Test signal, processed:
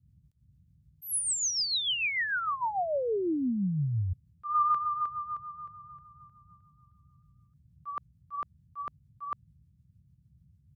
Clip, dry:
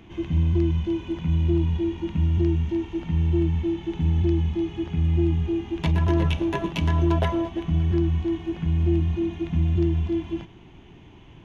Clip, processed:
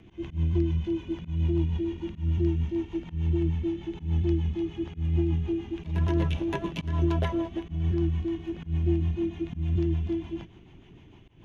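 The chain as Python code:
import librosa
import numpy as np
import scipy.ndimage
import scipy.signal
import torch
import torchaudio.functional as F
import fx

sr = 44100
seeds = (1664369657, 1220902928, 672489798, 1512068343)

y = fx.rotary(x, sr, hz=6.7)
y = fx.dmg_noise_band(y, sr, seeds[0], low_hz=54.0, high_hz=160.0, level_db=-59.0)
y = fx.auto_swell(y, sr, attack_ms=138.0)
y = y * 10.0 ** (-2.5 / 20.0)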